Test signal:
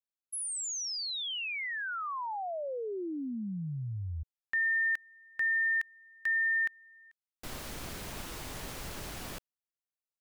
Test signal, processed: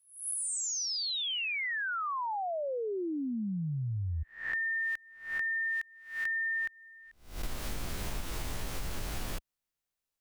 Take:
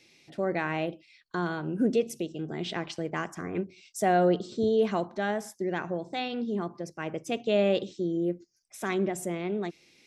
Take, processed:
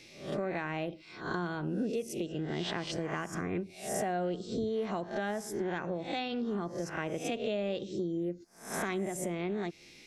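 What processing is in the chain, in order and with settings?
peak hold with a rise ahead of every peak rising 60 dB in 0.45 s
low-shelf EQ 67 Hz +12 dB
downward compressor 5 to 1, threshold −36 dBFS
level +4 dB

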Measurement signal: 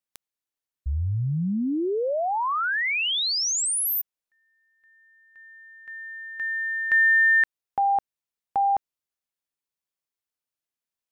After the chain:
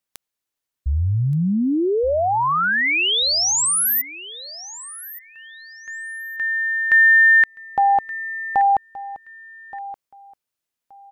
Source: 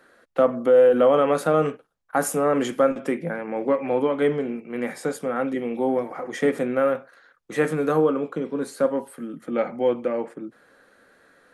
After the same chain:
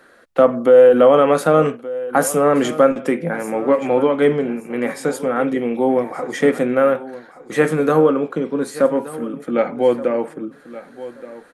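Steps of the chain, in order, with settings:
repeating echo 1,174 ms, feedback 22%, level −16.5 dB
level +6 dB

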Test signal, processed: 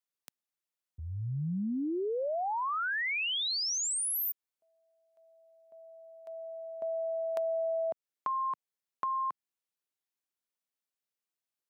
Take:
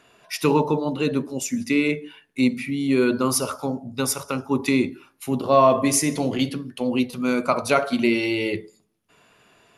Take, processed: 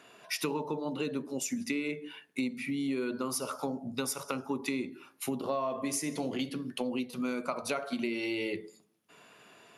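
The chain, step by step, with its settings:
high-pass filter 160 Hz 12 dB per octave
downward compressor 6 to 1, threshold −31 dBFS

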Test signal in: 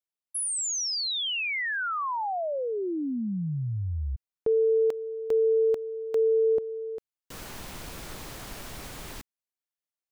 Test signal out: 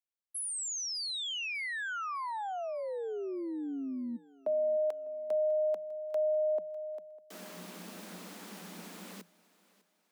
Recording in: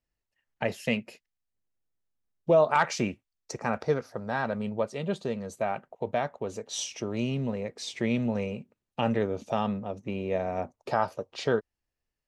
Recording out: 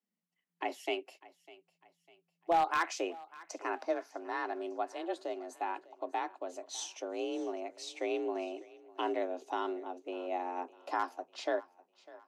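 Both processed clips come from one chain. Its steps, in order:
frequency shifter +170 Hz
wave folding −14 dBFS
feedback echo with a high-pass in the loop 601 ms, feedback 43%, high-pass 280 Hz, level −20 dB
level −7 dB

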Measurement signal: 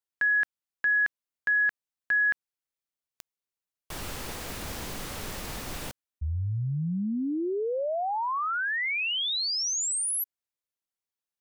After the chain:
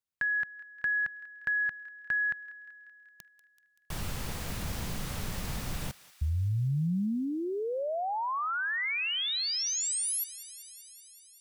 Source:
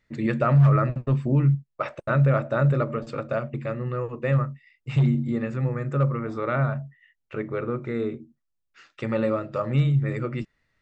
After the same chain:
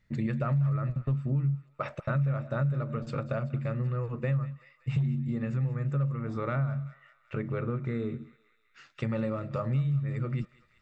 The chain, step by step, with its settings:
low shelf with overshoot 230 Hz +6.5 dB, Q 1.5
downward compressor 4 to 1, threshold −26 dBFS
feedback echo with a high-pass in the loop 191 ms, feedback 77%, high-pass 1,100 Hz, level −16.5 dB
level −2 dB

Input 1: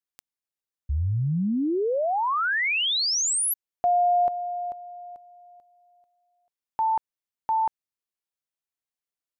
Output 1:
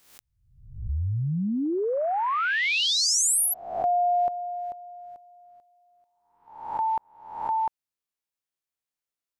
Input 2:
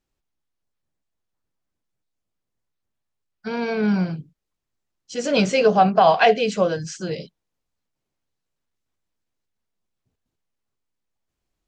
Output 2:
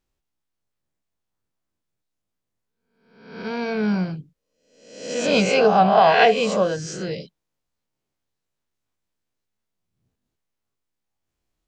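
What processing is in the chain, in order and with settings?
peak hold with a rise ahead of every peak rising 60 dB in 0.74 s
level −2 dB

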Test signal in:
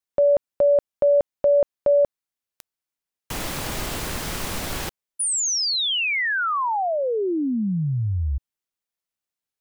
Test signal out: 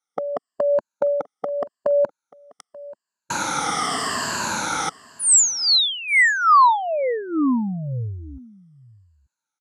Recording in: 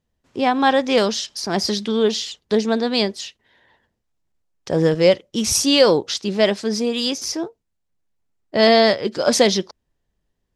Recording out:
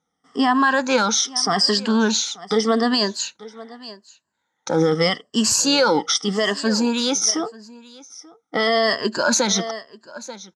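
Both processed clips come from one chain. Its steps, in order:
rippled gain that drifts along the octave scale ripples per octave 1.4, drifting −0.83 Hz, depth 16 dB
loudspeaker in its box 240–8,600 Hz, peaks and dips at 370 Hz −9 dB, 570 Hz −8 dB, 870 Hz +3 dB, 1,300 Hz +7 dB, 2,500 Hz −10 dB, 3,800 Hz −5 dB
on a send: single-tap delay 885 ms −22.5 dB
on the sum: dynamic equaliser 600 Hz, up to −3 dB, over −25 dBFS, Q 1.2
brickwall limiter −12.5 dBFS
level +4.5 dB

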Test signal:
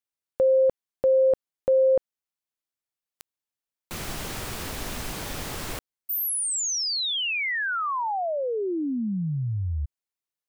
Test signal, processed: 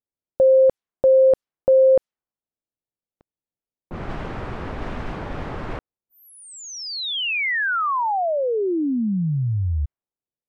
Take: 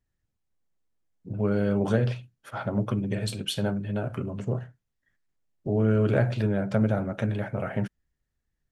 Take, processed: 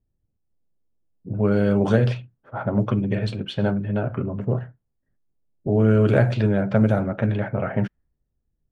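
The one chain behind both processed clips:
low-pass that shuts in the quiet parts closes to 550 Hz, open at −19 dBFS
level +5.5 dB

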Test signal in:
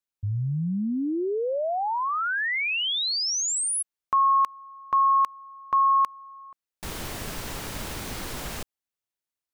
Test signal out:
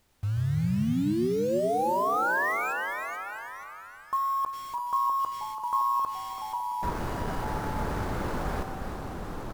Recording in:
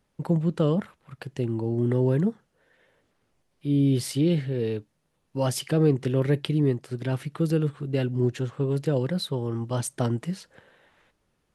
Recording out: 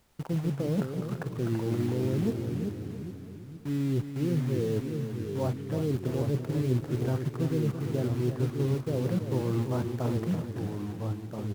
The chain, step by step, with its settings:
treble cut that deepens with the level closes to 650 Hz, closed at −18.5 dBFS
low-pass filter 1,600 Hz 24 dB per octave
reversed playback
downward compressor 16 to 1, threshold −30 dBFS
reversed playback
background noise pink −68 dBFS
in parallel at −3.5 dB: bit reduction 7 bits
on the sum: delay with pitch and tempo change per echo 104 ms, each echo −2 semitones, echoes 3, each echo −6 dB
repeating echo 334 ms, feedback 46%, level −9.5 dB

